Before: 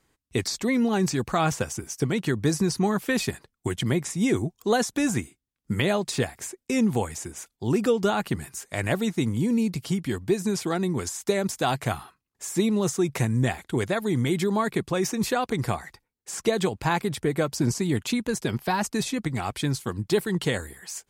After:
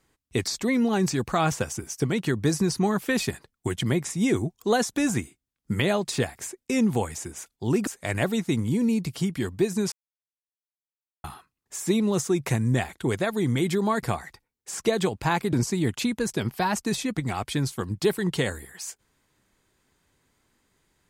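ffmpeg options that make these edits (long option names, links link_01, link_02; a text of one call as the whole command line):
ffmpeg -i in.wav -filter_complex "[0:a]asplit=6[link_01][link_02][link_03][link_04][link_05][link_06];[link_01]atrim=end=7.872[link_07];[link_02]atrim=start=8.558:end=10.61,asetpts=PTS-STARTPTS,afade=type=out:start_time=2.048:duration=0.004:curve=hsin[link_08];[link_03]atrim=start=10.61:end=11.93,asetpts=PTS-STARTPTS,volume=0[link_09];[link_04]atrim=start=11.93:end=14.722,asetpts=PTS-STARTPTS,afade=type=in:duration=0.004:curve=hsin[link_10];[link_05]atrim=start=15.628:end=17.132[link_11];[link_06]atrim=start=17.608[link_12];[link_08][link_09][link_10]concat=n=3:v=0:a=1[link_13];[link_07][link_13]acrossfade=duration=0.004:curve1=hsin:curve2=hsin[link_14];[link_14][link_11]acrossfade=duration=0.004:curve1=hsin:curve2=hsin[link_15];[link_15][link_12]acrossfade=duration=0.004:curve1=hsin:curve2=hsin" out.wav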